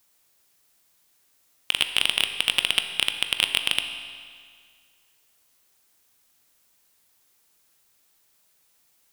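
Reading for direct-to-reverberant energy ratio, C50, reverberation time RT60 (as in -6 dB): 7.0 dB, 8.5 dB, 2.0 s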